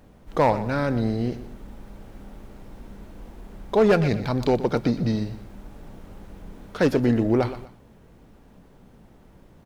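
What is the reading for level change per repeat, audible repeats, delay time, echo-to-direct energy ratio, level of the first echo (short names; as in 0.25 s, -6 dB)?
-9.5 dB, 2, 0.121 s, -13.5 dB, -14.0 dB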